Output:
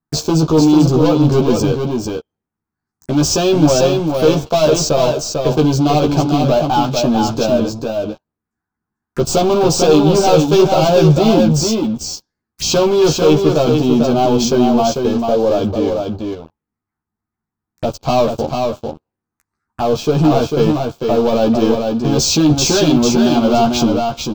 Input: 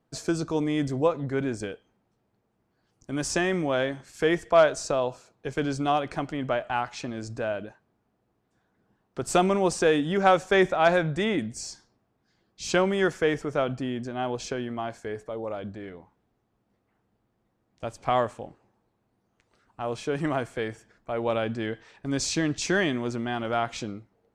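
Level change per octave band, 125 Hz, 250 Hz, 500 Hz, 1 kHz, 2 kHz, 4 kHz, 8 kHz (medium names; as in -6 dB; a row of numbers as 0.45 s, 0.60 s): +17.5 dB, +16.0 dB, +13.0 dB, +10.5 dB, +1.5 dB, +15.0 dB, +15.5 dB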